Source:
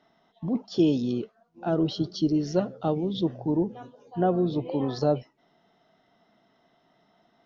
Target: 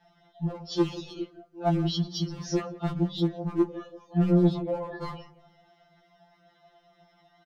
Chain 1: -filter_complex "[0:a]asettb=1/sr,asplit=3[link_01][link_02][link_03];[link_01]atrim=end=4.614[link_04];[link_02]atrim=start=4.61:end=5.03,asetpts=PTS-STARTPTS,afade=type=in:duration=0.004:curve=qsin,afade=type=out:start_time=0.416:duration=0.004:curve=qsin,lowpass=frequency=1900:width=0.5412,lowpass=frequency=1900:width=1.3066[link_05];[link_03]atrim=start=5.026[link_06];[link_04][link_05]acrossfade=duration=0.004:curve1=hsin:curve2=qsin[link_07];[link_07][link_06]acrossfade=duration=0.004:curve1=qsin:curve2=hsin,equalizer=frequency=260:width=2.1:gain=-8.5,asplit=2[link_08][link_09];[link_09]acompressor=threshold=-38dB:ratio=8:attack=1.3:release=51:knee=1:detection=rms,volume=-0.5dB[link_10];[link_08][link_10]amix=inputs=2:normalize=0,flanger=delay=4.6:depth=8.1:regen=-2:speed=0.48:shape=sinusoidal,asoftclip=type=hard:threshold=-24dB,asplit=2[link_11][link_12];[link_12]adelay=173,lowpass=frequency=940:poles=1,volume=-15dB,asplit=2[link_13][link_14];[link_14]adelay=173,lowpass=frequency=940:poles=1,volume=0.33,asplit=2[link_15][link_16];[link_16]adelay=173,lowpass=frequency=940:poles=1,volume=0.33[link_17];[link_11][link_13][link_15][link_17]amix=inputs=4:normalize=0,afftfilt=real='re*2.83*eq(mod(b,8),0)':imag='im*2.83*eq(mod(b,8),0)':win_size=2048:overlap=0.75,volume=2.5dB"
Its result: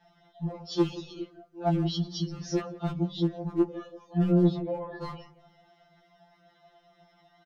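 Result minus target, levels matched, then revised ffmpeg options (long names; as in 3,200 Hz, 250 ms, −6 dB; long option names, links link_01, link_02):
downward compressor: peak gain reduction +8.5 dB
-filter_complex "[0:a]asettb=1/sr,asplit=3[link_01][link_02][link_03];[link_01]atrim=end=4.614[link_04];[link_02]atrim=start=4.61:end=5.03,asetpts=PTS-STARTPTS,afade=type=in:duration=0.004:curve=qsin,afade=type=out:start_time=0.416:duration=0.004:curve=qsin,lowpass=frequency=1900:width=0.5412,lowpass=frequency=1900:width=1.3066[link_05];[link_03]atrim=start=5.026[link_06];[link_04][link_05]acrossfade=duration=0.004:curve1=hsin:curve2=qsin[link_07];[link_07][link_06]acrossfade=duration=0.004:curve1=qsin:curve2=hsin,equalizer=frequency=260:width=2.1:gain=-8.5,asplit=2[link_08][link_09];[link_09]acompressor=threshold=-28.5dB:ratio=8:attack=1.3:release=51:knee=1:detection=rms,volume=-0.5dB[link_10];[link_08][link_10]amix=inputs=2:normalize=0,flanger=delay=4.6:depth=8.1:regen=-2:speed=0.48:shape=sinusoidal,asoftclip=type=hard:threshold=-24dB,asplit=2[link_11][link_12];[link_12]adelay=173,lowpass=frequency=940:poles=1,volume=-15dB,asplit=2[link_13][link_14];[link_14]adelay=173,lowpass=frequency=940:poles=1,volume=0.33,asplit=2[link_15][link_16];[link_16]adelay=173,lowpass=frequency=940:poles=1,volume=0.33[link_17];[link_11][link_13][link_15][link_17]amix=inputs=4:normalize=0,afftfilt=real='re*2.83*eq(mod(b,8),0)':imag='im*2.83*eq(mod(b,8),0)':win_size=2048:overlap=0.75,volume=2.5dB"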